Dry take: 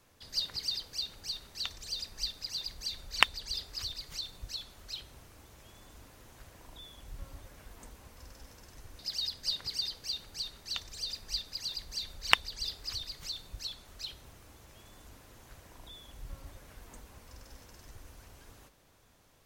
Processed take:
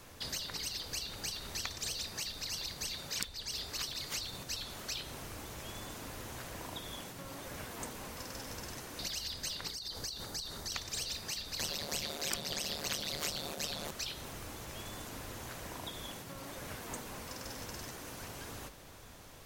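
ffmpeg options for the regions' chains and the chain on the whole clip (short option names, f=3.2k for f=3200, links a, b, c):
-filter_complex "[0:a]asettb=1/sr,asplit=3[a][b][c];[a]atrim=end=9.704[d];[b]atrim=start=9.7:end=10.72,asetpts=PTS-STARTPTS,afade=t=in:d=0.004:c=qsin,afade=t=out:st=1.016:d=0.004:c=qsin,equalizer=f=2.6k:w=2:g=-9.5,acompressor=threshold=-46dB:ratio=6:attack=3.2:release=140:knee=1:detection=peak[e];[c]atrim=start=10.716[f];[d][e]acrossfade=d=0.004:c1=hsin:c2=qsin[g];[g][f]acrossfade=d=0.004:c1=qsin:c2=hsin,asettb=1/sr,asplit=3[h][i][j];[h]atrim=end=11.594[k];[i]atrim=start=11.59:end=13.91,asetpts=PTS-STARTPTS,afade=t=in:d=0.004:c=qsin,afade=t=out:st=2.316:d=0.004:c=qsin,equalizer=f=550:t=o:w=0.24:g=13,tremolo=f=150:d=1,aeval=exprs='0.237*sin(PI/2*2.51*val(0)/0.237)':c=same[l];[j]atrim=start=13.906[m];[k][l]acrossfade=d=0.004:c1=hsin:c2=qsin[n];[n][m]acrossfade=d=0.004:c1=qsin:c2=hsin,acompressor=threshold=-44dB:ratio=2,afftfilt=real='re*lt(hypot(re,im),0.0158)':imag='im*lt(hypot(re,im),0.0158)':win_size=1024:overlap=0.75,volume=11.5dB"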